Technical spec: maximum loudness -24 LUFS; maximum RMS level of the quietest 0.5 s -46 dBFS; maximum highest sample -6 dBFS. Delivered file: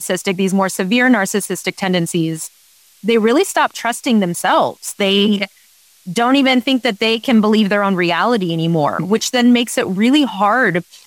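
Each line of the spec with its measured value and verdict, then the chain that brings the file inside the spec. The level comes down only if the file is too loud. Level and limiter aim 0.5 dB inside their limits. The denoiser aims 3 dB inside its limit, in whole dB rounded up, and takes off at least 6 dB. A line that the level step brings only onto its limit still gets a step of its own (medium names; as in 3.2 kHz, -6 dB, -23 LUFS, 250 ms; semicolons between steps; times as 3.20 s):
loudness -15.5 LUFS: fail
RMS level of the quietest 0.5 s -50 dBFS: pass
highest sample -4.0 dBFS: fail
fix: trim -9 dB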